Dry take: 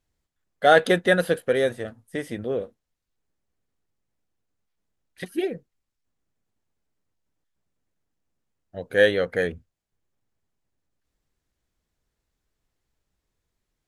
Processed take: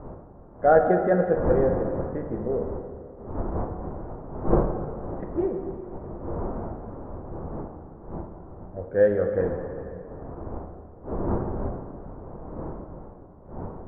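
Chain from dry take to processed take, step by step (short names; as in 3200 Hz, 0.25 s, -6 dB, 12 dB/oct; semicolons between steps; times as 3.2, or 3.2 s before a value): wind noise 570 Hz -34 dBFS; LPF 1200 Hz 24 dB/oct; low shelf 71 Hz +10 dB; plate-style reverb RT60 2.5 s, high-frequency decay 0.75×, DRR 4 dB; gain -2 dB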